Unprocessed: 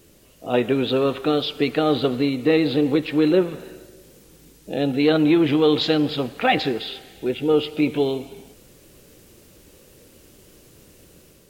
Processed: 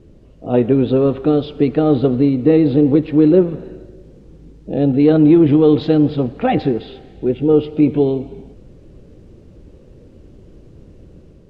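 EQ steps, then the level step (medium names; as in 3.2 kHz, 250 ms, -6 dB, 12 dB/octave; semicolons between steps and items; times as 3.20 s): low-pass 5.5 kHz 12 dB/octave; tilt shelf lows +9.5 dB; bass shelf 100 Hz +7 dB; -1.0 dB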